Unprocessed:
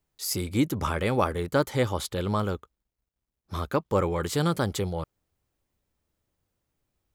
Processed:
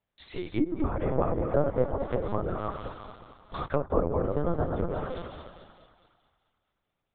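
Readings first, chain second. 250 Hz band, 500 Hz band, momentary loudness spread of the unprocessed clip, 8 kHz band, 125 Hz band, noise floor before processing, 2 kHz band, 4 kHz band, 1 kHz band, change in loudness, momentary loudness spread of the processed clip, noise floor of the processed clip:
−2.5 dB, 0.0 dB, 9 LU, below −40 dB, −3.5 dB, −85 dBFS, −9.0 dB, −14.5 dB, −3.0 dB, −2.5 dB, 15 LU, −83 dBFS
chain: feedback delay that plays each chunk backwards 180 ms, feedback 41%, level −4.5 dB
high-pass filter 240 Hz 12 dB per octave
on a send: feedback echo with a high-pass in the loop 216 ms, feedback 52%, high-pass 320 Hz, level −8 dB
on the sum: linear-prediction vocoder at 8 kHz pitch kept
treble cut that deepens with the level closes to 790 Hz, closed at −23.5 dBFS

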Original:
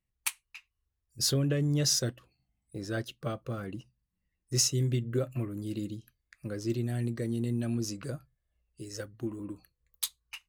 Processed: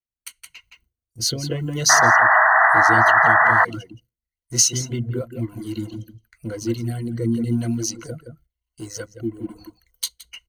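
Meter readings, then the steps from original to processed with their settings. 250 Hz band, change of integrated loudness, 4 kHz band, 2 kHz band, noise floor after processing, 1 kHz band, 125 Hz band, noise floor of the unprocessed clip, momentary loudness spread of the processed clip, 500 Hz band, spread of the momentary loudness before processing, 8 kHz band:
+7.0 dB, +15.0 dB, +7.5 dB, +28.5 dB, below −85 dBFS, +32.0 dB, +4.5 dB, −83 dBFS, 21 LU, +10.0 dB, 18 LU, +11.0 dB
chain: mu-law and A-law mismatch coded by mu
slap from a distant wall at 29 metres, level −7 dB
rotating-speaker cabinet horn 1 Hz
EQ curve with evenly spaced ripples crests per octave 1.9, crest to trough 12 dB
automatic gain control gain up to 9 dB
reverb reduction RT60 0.79 s
sound drawn into the spectrogram noise, 0:01.89–0:03.65, 620–2,000 Hz −11 dBFS
dynamic equaliser 4,700 Hz, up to +7 dB, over −35 dBFS, Q 1
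noise gate with hold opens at −44 dBFS
level −4 dB

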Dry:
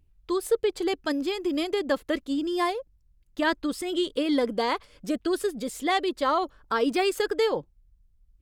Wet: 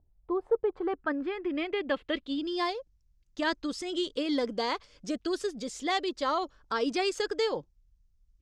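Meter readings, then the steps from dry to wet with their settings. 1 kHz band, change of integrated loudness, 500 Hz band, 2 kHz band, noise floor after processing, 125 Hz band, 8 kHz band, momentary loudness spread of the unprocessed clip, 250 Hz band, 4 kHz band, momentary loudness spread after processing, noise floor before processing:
−4.5 dB, −4.5 dB, −4.5 dB, −3.5 dB, −68 dBFS, can't be measured, −5.0 dB, 6 LU, −5.0 dB, −2.5 dB, 6 LU, −63 dBFS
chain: low-pass filter sweep 730 Hz → 6,100 Hz, 0:00.18–0:02.92
level −5 dB

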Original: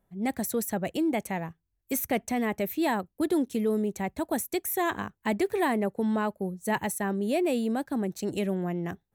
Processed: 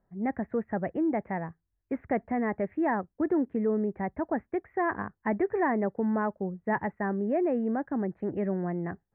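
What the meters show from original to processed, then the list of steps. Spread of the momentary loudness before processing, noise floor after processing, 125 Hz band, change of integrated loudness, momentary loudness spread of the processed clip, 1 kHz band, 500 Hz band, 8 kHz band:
6 LU, −81 dBFS, −1.0 dB, −1.0 dB, 6 LU, 0.0 dB, −0.5 dB, below −40 dB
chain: elliptic low-pass filter 1,900 Hz, stop band 60 dB

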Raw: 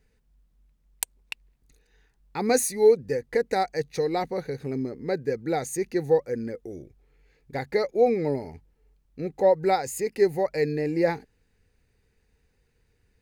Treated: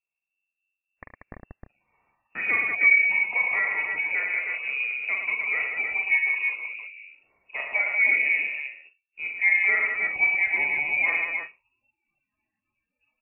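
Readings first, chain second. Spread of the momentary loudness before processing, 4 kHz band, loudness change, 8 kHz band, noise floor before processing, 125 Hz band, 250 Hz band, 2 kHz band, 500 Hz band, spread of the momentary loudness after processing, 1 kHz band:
15 LU, can't be measured, +3.5 dB, below −40 dB, −69 dBFS, below −20 dB, below −20 dB, +18.5 dB, −22.0 dB, 14 LU, −8.5 dB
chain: multi-tap delay 45/75/110/187/312/341 ms −4.5/−12.5/−5/−5.5/−5.5/−16.5 dB
noise reduction from a noise print of the clip's start 25 dB
voice inversion scrambler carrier 2,700 Hz
level −3 dB

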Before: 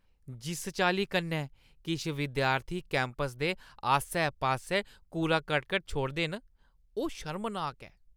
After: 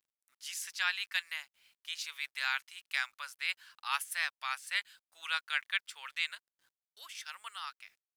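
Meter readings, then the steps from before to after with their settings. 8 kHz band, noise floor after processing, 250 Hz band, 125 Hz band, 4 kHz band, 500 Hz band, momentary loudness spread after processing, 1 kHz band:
0.0 dB, below −85 dBFS, below −40 dB, below −40 dB, 0.0 dB, −31.5 dB, 14 LU, −10.0 dB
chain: high-pass filter 1,400 Hz 24 dB per octave
bit reduction 12 bits

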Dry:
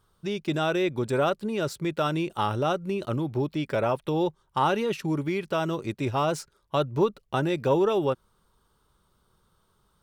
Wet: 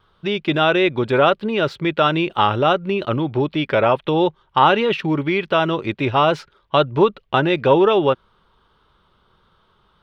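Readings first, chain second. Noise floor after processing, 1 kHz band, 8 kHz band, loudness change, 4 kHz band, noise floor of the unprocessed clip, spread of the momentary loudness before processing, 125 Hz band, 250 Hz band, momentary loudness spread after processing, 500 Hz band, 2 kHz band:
−61 dBFS, +10.5 dB, can't be measured, +9.0 dB, +12.0 dB, −69 dBFS, 5 LU, +5.5 dB, +7.5 dB, 6 LU, +8.5 dB, +12.0 dB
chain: drawn EQ curve 140 Hz 0 dB, 3,300 Hz +8 dB, 7,800 Hz −18 dB
pitch vibrato 1.5 Hz 15 cents
level +5.5 dB

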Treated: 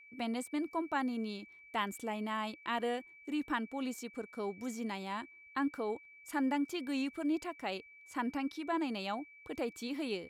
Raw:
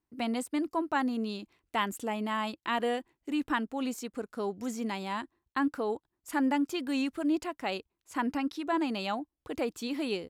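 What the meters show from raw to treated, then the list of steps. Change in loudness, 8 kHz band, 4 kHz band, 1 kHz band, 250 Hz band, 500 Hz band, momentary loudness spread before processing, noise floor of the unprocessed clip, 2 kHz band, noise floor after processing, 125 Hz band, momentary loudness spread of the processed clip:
−5.0 dB, −5.0 dB, −5.0 dB, −5.0 dB, −5.0 dB, −5.0 dB, 7 LU, below −85 dBFS, −4.5 dB, −58 dBFS, can't be measured, 7 LU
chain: steady tone 2,300 Hz −50 dBFS
level −5 dB

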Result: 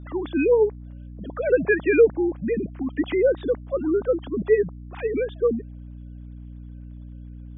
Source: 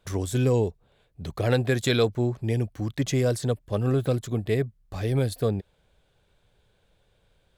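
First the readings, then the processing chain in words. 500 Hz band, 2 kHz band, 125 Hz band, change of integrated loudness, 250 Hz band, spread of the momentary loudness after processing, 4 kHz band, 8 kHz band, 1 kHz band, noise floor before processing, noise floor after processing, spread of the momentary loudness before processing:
+7.0 dB, +6.0 dB, −12.0 dB, +3.5 dB, +2.5 dB, 22 LU, below −10 dB, below −40 dB, −1.5 dB, −67 dBFS, −40 dBFS, 7 LU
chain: three sine waves on the formant tracks
gate on every frequency bin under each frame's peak −25 dB strong
mains hum 60 Hz, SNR 15 dB
level +3 dB

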